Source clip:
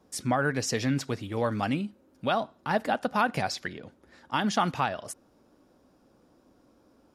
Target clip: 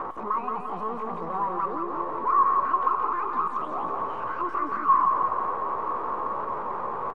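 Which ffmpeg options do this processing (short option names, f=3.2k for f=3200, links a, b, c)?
-af "aeval=exprs='val(0)+0.5*0.0224*sgn(val(0))':c=same,highpass=94,acompressor=threshold=-26dB:ratio=8,alimiter=level_in=1.5dB:limit=-24dB:level=0:latency=1:release=14,volume=-1.5dB,asoftclip=type=tanh:threshold=-32.5dB,aeval=exprs='0.0237*(cos(1*acos(clip(val(0)/0.0237,-1,1)))-cos(1*PI/2))+0.00335*(cos(4*acos(clip(val(0)/0.0237,-1,1)))-cos(4*PI/2))+0.000188*(cos(5*acos(clip(val(0)/0.0237,-1,1)))-cos(5*PI/2))+0.00335*(cos(7*acos(clip(val(0)/0.0237,-1,1)))-cos(7*PI/2))+0.000168*(cos(8*acos(clip(val(0)/0.0237,-1,1)))-cos(8*PI/2))':c=same,crystalizer=i=1:c=0,asetrate=74167,aresample=44100,atempo=0.594604,lowpass=f=1.1k:t=q:w=13,aecho=1:1:173|346|519|692|865|1038|1211:0.596|0.316|0.167|0.0887|0.047|0.0249|0.0132"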